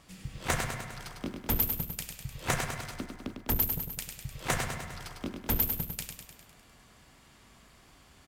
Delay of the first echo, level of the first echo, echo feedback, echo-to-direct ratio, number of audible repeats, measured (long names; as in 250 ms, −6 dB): 101 ms, −6.0 dB, 59%, −4.0 dB, 7